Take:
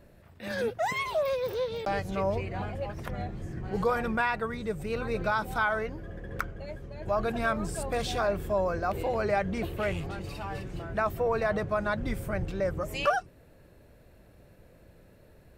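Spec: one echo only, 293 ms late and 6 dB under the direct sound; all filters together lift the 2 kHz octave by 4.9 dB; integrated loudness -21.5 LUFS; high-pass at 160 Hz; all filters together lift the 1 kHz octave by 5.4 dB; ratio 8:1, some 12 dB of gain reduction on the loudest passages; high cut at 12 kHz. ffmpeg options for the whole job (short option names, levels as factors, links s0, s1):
-af "highpass=160,lowpass=12000,equalizer=f=1000:t=o:g=6,equalizer=f=2000:t=o:g=4,acompressor=threshold=0.0398:ratio=8,aecho=1:1:293:0.501,volume=3.76"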